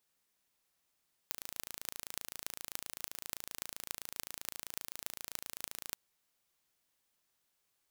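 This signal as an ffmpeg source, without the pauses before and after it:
-f lavfi -i "aevalsrc='0.355*eq(mod(n,1592),0)*(0.5+0.5*eq(mod(n,12736),0))':d=4.65:s=44100"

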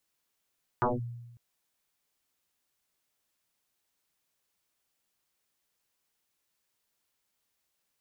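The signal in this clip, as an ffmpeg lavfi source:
-f lavfi -i "aevalsrc='0.0841*pow(10,-3*t/1.1)*sin(2*PI*119*t+11*clip(1-t/0.18,0,1)*sin(2*PI*1.03*119*t))':d=0.55:s=44100"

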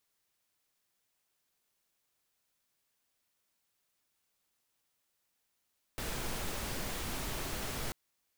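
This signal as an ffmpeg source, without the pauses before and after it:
-f lavfi -i "anoisesrc=c=pink:a=0.0684:d=1.94:r=44100:seed=1"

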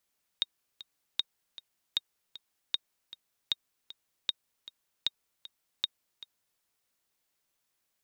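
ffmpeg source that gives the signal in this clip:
-f lavfi -i "aevalsrc='pow(10,(-14-17*gte(mod(t,2*60/155),60/155))/20)*sin(2*PI*3730*mod(t,60/155))*exp(-6.91*mod(t,60/155)/0.03)':d=6.19:s=44100"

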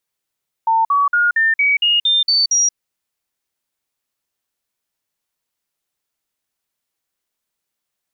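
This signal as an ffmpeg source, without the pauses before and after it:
-f lavfi -i "aevalsrc='0.266*clip(min(mod(t,0.23),0.18-mod(t,0.23))/0.005,0,1)*sin(2*PI*900*pow(2,floor(t/0.23)/3)*mod(t,0.23))':d=2.07:s=44100"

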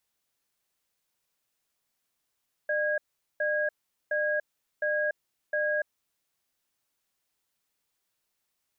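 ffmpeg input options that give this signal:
-f lavfi -i "aevalsrc='0.0422*(sin(2*PI*602*t)+sin(2*PI*1640*t))*clip(min(mod(t,0.71),0.29-mod(t,0.71))/0.005,0,1)':d=3.25:s=44100"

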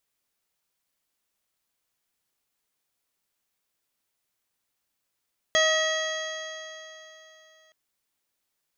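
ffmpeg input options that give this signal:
-f lavfi -i "aevalsrc='0.0794*pow(10,-3*t/3.24)*sin(2*PI*630.13*t)+0.0355*pow(10,-3*t/3.24)*sin(2*PI*1267.03*t)+0.0794*pow(10,-3*t/3.24)*sin(2*PI*1917.33*t)+0.00944*pow(10,-3*t/3.24)*sin(2*PI*2587.45*t)+0.0631*pow(10,-3*t/3.24)*sin(2*PI*3283.48*t)+0.0106*pow(10,-3*t/3.24)*sin(2*PI*4011.11*t)+0.0188*pow(10,-3*t/3.24)*sin(2*PI*4775.58*t)+0.0126*pow(10,-3*t/3.24)*sin(2*PI*5581.67*t)+0.0376*pow(10,-3*t/3.24)*sin(2*PI*6433.65*t)':d=2.17:s=44100"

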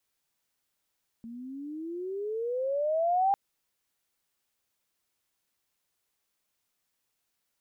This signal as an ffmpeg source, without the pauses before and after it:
-f lavfi -i "aevalsrc='pow(10,(-21+18.5*(t/2.1-1))/20)*sin(2*PI*226*2.1/(22*log(2)/12)*(exp(22*log(2)/12*t/2.1)-1))':d=2.1:s=44100"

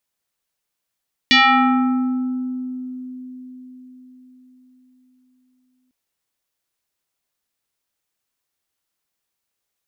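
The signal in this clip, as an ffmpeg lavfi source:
-f lavfi -i "aevalsrc='0.376*pow(10,-3*t/4.97)*sin(2*PI*254*t+3.9*pow(10,-3*t/1.78)*sin(2*PI*4.18*254*t))':d=4.6:s=44100"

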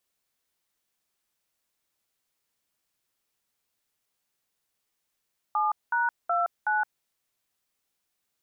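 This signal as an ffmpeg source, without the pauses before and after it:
-f lavfi -i "aevalsrc='0.0562*clip(min(mod(t,0.372),0.168-mod(t,0.372))/0.002,0,1)*(eq(floor(t/0.372),0)*(sin(2*PI*852*mod(t,0.372))+sin(2*PI*1209*mod(t,0.372)))+eq(floor(t/0.372),1)*(sin(2*PI*941*mod(t,0.372))+sin(2*PI*1477*mod(t,0.372)))+eq(floor(t/0.372),2)*(sin(2*PI*697*mod(t,0.372))+sin(2*PI*1336*mod(t,0.372)))+eq(floor(t/0.372),3)*(sin(2*PI*852*mod(t,0.372))+sin(2*PI*1477*mod(t,0.372))))':d=1.488:s=44100"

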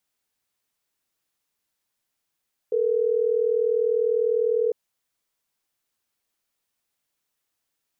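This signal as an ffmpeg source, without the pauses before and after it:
-f lavfi -i "aevalsrc='0.0794*(sin(2*PI*440*t)+sin(2*PI*480*t))*clip(min(mod(t,6),2-mod(t,6))/0.005,0,1)':d=3.12:s=44100"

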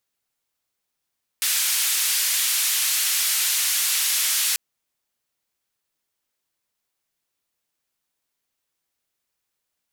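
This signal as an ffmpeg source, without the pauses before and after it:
-f lavfi -i "anoisesrc=c=white:d=3.14:r=44100:seed=1,highpass=f=2000,lowpass=f=14000,volume=-14.4dB"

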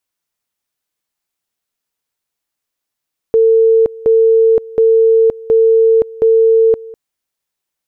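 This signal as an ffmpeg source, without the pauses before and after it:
-f lavfi -i "aevalsrc='pow(10,(-6-21.5*gte(mod(t,0.72),0.52))/20)*sin(2*PI*450*t)':d=3.6:s=44100"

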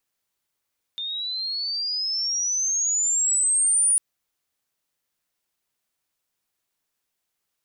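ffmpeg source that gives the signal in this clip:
-f lavfi -i "aevalsrc='pow(10,(-27.5+11.5*t/3)/20)*sin(2*PI*3600*3/log(9700/3600)*(exp(log(9700/3600)*t/3)-1))':d=3:s=44100"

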